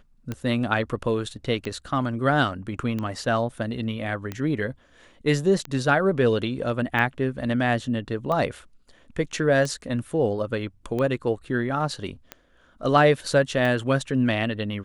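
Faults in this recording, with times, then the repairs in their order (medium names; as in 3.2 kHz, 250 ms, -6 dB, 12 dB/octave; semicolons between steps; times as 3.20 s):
tick 45 rpm -17 dBFS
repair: de-click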